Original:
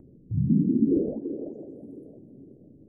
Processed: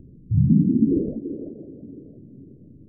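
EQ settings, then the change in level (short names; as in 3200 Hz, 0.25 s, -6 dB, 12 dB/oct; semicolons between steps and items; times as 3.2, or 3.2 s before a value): Gaussian blur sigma 14 samples; low shelf 210 Hz +11 dB; 0.0 dB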